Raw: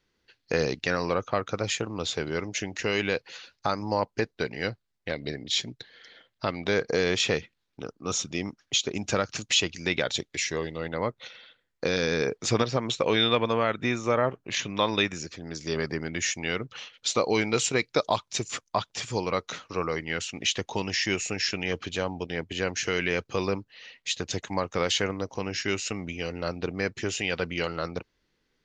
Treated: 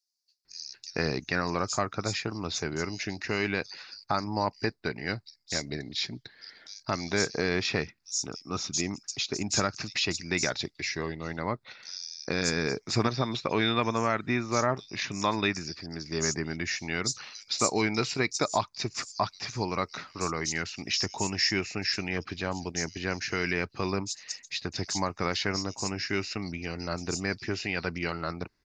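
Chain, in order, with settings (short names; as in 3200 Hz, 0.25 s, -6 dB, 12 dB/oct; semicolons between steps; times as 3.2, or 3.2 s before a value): thirty-one-band EQ 500 Hz -10 dB, 3150 Hz -12 dB, 5000 Hz +9 dB; bands offset in time highs, lows 0.45 s, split 5000 Hz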